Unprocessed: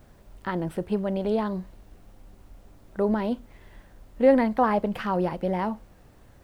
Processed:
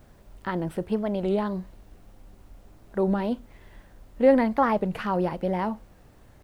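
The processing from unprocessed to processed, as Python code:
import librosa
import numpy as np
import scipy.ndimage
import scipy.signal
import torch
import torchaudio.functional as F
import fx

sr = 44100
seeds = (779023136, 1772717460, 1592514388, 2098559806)

y = fx.record_warp(x, sr, rpm=33.33, depth_cents=160.0)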